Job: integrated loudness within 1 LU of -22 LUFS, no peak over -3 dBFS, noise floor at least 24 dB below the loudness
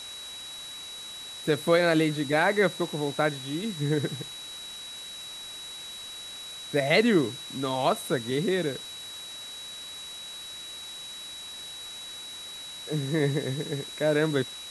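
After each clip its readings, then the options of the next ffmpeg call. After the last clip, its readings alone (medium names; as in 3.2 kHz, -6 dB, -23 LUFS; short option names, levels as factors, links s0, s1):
steady tone 3.9 kHz; tone level -39 dBFS; noise floor -41 dBFS; noise floor target -53 dBFS; loudness -29.0 LUFS; peak level -9.5 dBFS; loudness target -22.0 LUFS
-> -af "bandreject=f=3900:w=30"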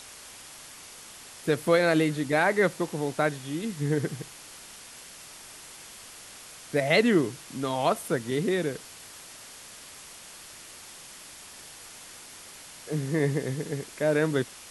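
steady tone not found; noise floor -47 dBFS; noise floor target -51 dBFS
-> -af "afftdn=nr=6:nf=-47"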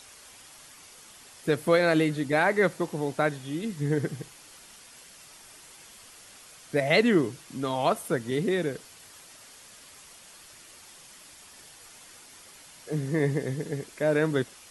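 noise floor -51 dBFS; loudness -27.0 LUFS; peak level -9.5 dBFS; loudness target -22.0 LUFS
-> -af "volume=1.78"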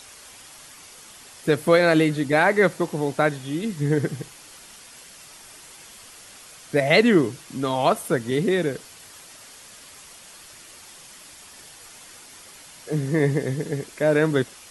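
loudness -22.0 LUFS; peak level -4.5 dBFS; noise floor -46 dBFS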